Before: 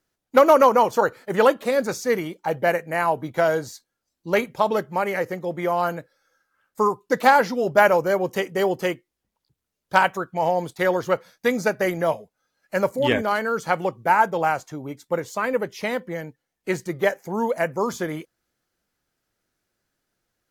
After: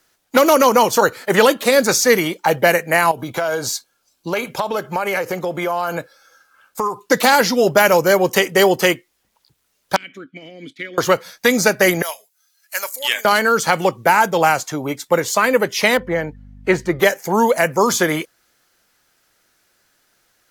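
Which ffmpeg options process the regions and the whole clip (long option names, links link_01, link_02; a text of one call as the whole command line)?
ffmpeg -i in.wav -filter_complex "[0:a]asettb=1/sr,asplit=3[link_01][link_02][link_03];[link_01]atrim=end=3.114[link_04];[link_02]atrim=start=3.11:end=6.99,asetpts=PTS-STARTPTS,afade=type=in:duration=0.004:curve=qsin,afade=type=out:start_time=3.876:duration=0.004:curve=qsin,bandreject=frequency=1900:width=5.8,acompressor=threshold=-29dB:ratio=10:attack=3.2:release=140:knee=1:detection=peak[link_05];[link_03]atrim=start=6.986[link_06];[link_04][link_05]acrossfade=duration=0.004:curve1=hsin:curve2=qsin[link_07];[link_07][link_06]acrossfade=duration=0.004:curve1=qsin:curve2=hsin,asettb=1/sr,asplit=3[link_08][link_09][link_10];[link_08]atrim=end=9.964[link_11];[link_09]atrim=start=9.96:end=10.98,asetpts=PTS-STARTPTS,afade=type=in:duration=0.004:curve=qsin,afade=type=out:start_time=1.016:duration=0.004:curve=qsin,lowshelf=frequency=110:gain=10.5,acompressor=threshold=-22dB:ratio=10:attack=3.2:release=140:knee=1:detection=peak,asplit=3[link_12][link_13][link_14];[link_12]bandpass=frequency=270:width_type=q:width=8,volume=0dB[link_15];[link_13]bandpass=frequency=2290:width_type=q:width=8,volume=-6dB[link_16];[link_14]bandpass=frequency=3010:width_type=q:width=8,volume=-9dB[link_17];[link_15][link_16][link_17]amix=inputs=3:normalize=0[link_18];[link_10]atrim=start=10.976[link_19];[link_11][link_18]acrossfade=duration=0.004:curve1=hsin:curve2=qsin[link_20];[link_20][link_19]acrossfade=duration=0.004:curve1=qsin:curve2=hsin,asettb=1/sr,asplit=3[link_21][link_22][link_23];[link_21]atrim=end=12.024[link_24];[link_22]atrim=start=12.02:end=13.25,asetpts=PTS-STARTPTS,afade=type=in:duration=0.004:curve=qsin,afade=type=out:start_time=1.226:duration=0.004:curve=qsin,highpass=frequency=360:poles=1,aderivative[link_25];[link_23]atrim=start=13.246[link_26];[link_24][link_25]acrossfade=duration=0.004:curve1=hsin:curve2=qsin[link_27];[link_27][link_26]acrossfade=duration=0.004:curve1=qsin:curve2=hsin,asettb=1/sr,asplit=3[link_28][link_29][link_30];[link_28]atrim=end=15.974[link_31];[link_29]atrim=start=15.97:end=17,asetpts=PTS-STARTPTS,afade=type=in:duration=0.004:curve=qsin,afade=type=out:start_time=1.026:duration=0.004:curve=qsin,lowpass=frequency=1400:poles=1,aeval=exprs='val(0)+0.00501*(sin(2*PI*50*n/s)+sin(2*PI*2*50*n/s)/2+sin(2*PI*3*50*n/s)/3+sin(2*PI*4*50*n/s)/4+sin(2*PI*5*50*n/s)/5)':channel_layout=same[link_32];[link_30]atrim=start=16.996[link_33];[link_31][link_32]acrossfade=duration=0.004:curve1=hsin:curve2=qsin[link_34];[link_34][link_33]acrossfade=duration=0.004:curve1=qsin:curve2=hsin,lowshelf=frequency=490:gain=-11.5,acrossover=split=360|3000[link_35][link_36][link_37];[link_36]acompressor=threshold=-34dB:ratio=2.5[link_38];[link_35][link_38][link_37]amix=inputs=3:normalize=0,alimiter=level_in=18.5dB:limit=-1dB:release=50:level=0:latency=1,volume=-1dB" out.wav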